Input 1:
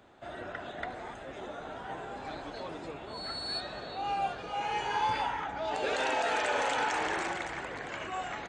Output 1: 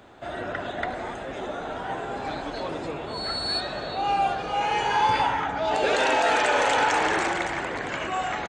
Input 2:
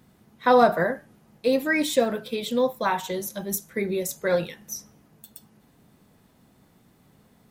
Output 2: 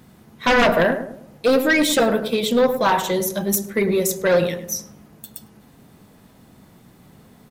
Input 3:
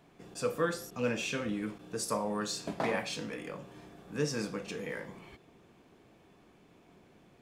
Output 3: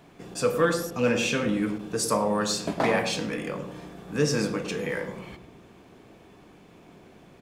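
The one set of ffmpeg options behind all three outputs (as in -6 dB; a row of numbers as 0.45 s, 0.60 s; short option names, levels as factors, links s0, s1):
-filter_complex "[0:a]aeval=exprs='0.447*sin(PI/2*2.82*val(0)/0.447)':c=same,asplit=2[s0][s1];[s1]adelay=104,lowpass=f=870:p=1,volume=0.447,asplit=2[s2][s3];[s3]adelay=104,lowpass=f=870:p=1,volume=0.46,asplit=2[s4][s5];[s5]adelay=104,lowpass=f=870:p=1,volume=0.46,asplit=2[s6][s7];[s7]adelay=104,lowpass=f=870:p=1,volume=0.46,asplit=2[s8][s9];[s9]adelay=104,lowpass=f=870:p=1,volume=0.46[s10];[s0][s2][s4][s6][s8][s10]amix=inputs=6:normalize=0,volume=0.596"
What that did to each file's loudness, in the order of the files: +8.5 LU, +5.5 LU, +8.5 LU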